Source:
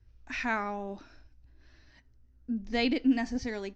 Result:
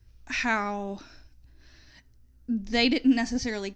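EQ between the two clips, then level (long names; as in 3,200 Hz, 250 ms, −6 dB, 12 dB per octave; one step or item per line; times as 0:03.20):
parametric band 160 Hz +4.5 dB 0.67 octaves
high-shelf EQ 3,700 Hz +11 dB
+3.0 dB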